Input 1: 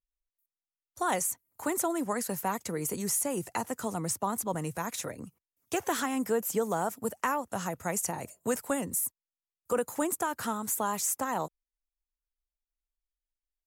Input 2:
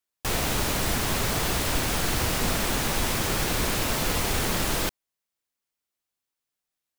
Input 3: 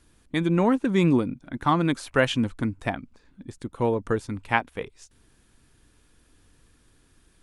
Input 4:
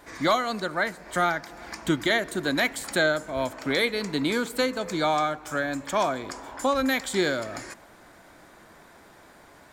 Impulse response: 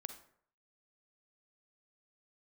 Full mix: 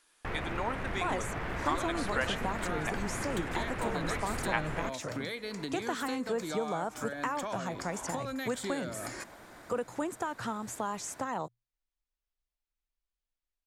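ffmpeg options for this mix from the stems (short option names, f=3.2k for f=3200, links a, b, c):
-filter_complex "[0:a]lowpass=5.2k,equalizer=f=120:w=6.9:g=12.5,volume=1dB[a];[1:a]lowpass=f=2k:t=q:w=1.7,acrusher=bits=3:mode=log:mix=0:aa=0.000001,aemphasis=mode=reproduction:type=75fm,volume=-6.5dB[b];[2:a]highpass=750,volume=-1dB[c];[3:a]acompressor=threshold=-32dB:ratio=6,adelay=1500,volume=0dB[d];[a][b][c][d]amix=inputs=4:normalize=0,acompressor=threshold=-38dB:ratio=1.5"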